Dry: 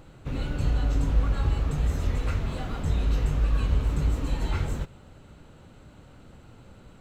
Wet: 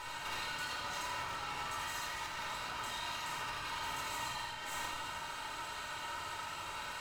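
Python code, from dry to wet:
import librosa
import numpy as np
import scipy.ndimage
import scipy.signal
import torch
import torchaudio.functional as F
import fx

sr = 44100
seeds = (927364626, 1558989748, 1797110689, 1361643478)

y = scipy.signal.sosfilt(scipy.signal.butter(6, 800.0, 'highpass', fs=sr, output='sos'), x)
y = y + 0.9 * np.pad(y, (int(3.2 * sr / 1000.0), 0))[:len(y)]
y = fx.over_compress(y, sr, threshold_db=-49.0, ratio=-1.0)
y = fx.tube_stage(y, sr, drive_db=49.0, bias=0.8)
y = y + 10.0 ** (-5.5 / 20.0) * np.pad(y, (int(81 * sr / 1000.0), 0))[:len(y)]
y = fx.room_shoebox(y, sr, seeds[0], volume_m3=3400.0, walls='furnished', distance_m=4.5)
y = F.gain(torch.from_numpy(y), 9.0).numpy()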